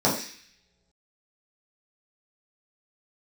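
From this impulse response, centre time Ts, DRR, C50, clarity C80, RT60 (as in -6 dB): 33 ms, -7.0 dB, 6.0 dB, 9.5 dB, no single decay rate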